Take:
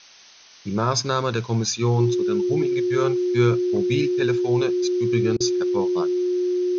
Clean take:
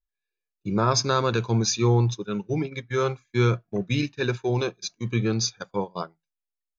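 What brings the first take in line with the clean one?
notch 360 Hz, Q 30; interpolate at 5.37, 32 ms; denoiser 30 dB, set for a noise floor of -42 dBFS

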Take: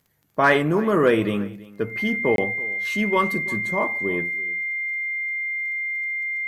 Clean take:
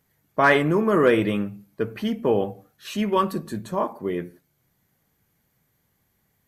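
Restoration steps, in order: de-click; notch 2100 Hz, Q 30; interpolate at 2.36, 22 ms; inverse comb 0.331 s -20 dB

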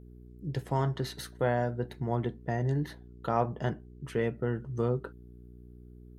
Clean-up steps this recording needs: de-hum 60.5 Hz, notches 7

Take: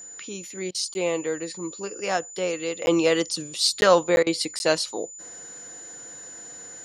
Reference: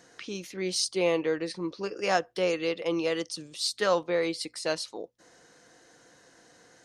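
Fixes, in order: notch 7000 Hz, Q 30; interpolate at 0.94/2.86/3.81/4.16/4.59, 11 ms; interpolate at 0.71/4.23, 35 ms; gain correction -8 dB, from 2.82

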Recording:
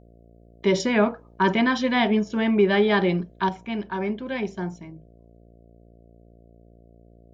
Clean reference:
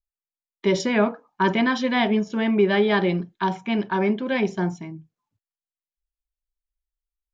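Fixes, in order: de-hum 57.6 Hz, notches 12; gain 0 dB, from 3.49 s +5.5 dB

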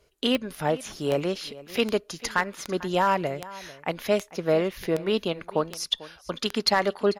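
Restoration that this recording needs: clip repair -11.5 dBFS; de-click; inverse comb 0.445 s -18.5 dB

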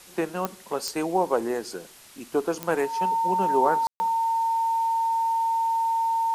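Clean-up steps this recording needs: de-click; notch 910 Hz, Q 30; room tone fill 3.87–4; noise print and reduce 23 dB

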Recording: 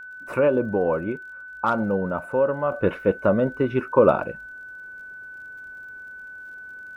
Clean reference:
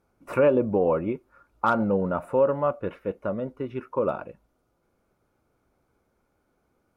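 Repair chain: de-click; notch 1500 Hz, Q 30; gain correction -9.5 dB, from 2.72

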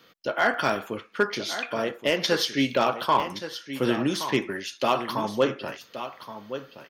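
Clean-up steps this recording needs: clip repair -12 dBFS; interpolate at 0.54/3.2, 1.1 ms; inverse comb 1.122 s -11.5 dB

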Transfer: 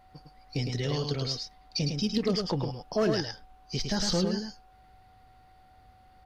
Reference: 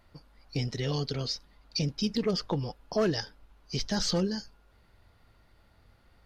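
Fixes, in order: notch 750 Hz, Q 30; inverse comb 0.107 s -5 dB

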